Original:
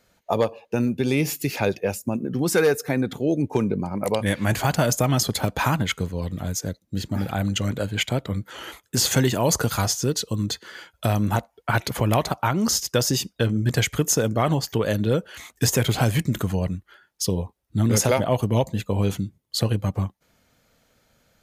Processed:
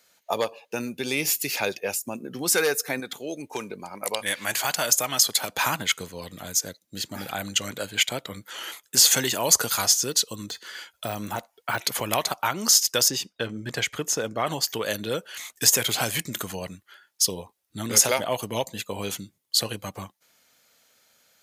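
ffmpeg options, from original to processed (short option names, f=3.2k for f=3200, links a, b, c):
-filter_complex "[0:a]asettb=1/sr,asplit=3[a][b][c];[a]atrim=end=3.004[d];[b]atrim=start=3:end=5.49,asetpts=PTS-STARTPTS,afade=t=in:d=0.004:c=qsin,afade=t=out:st=2.486:d=0.004:c=qsin,lowshelf=f=450:g=-7.5[e];[c]atrim=start=5.486[f];[d][e]acrossfade=d=0.004:c1=hsin:c2=qsin[g];[g][f]acrossfade=d=0.004:c1=qsin:c2=hsin,asettb=1/sr,asplit=3[h][i][j];[h]atrim=end=10.304[k];[i]atrim=start=10.3:end=11.84,asetpts=PTS-STARTPTS,afade=t=in:d=0.004:c=qsin,afade=t=out:st=1.536:d=0.004:c=qsin,deesser=0.85[l];[j]atrim=start=11.836[m];[k][l]acrossfade=d=0.004:c1=hsin:c2=qsin[n];[n][m]acrossfade=d=0.004:c1=qsin:c2=hsin,asettb=1/sr,asplit=3[o][p][q];[o]atrim=end=13.084[r];[p]atrim=start=13.08:end=14.47,asetpts=PTS-STARTPTS,afade=t=in:d=0.004:c=qsin,afade=t=out:st=1.386:d=0.004:c=qsin,lowpass=f=2.2k:p=1[s];[q]atrim=start=14.466[t];[r][s]acrossfade=d=0.004:c1=hsin:c2=qsin[u];[u][t]acrossfade=d=0.004:c1=qsin:c2=hsin,highpass=f=560:p=1,highshelf=f=2.4k:g=9,volume=-2dB"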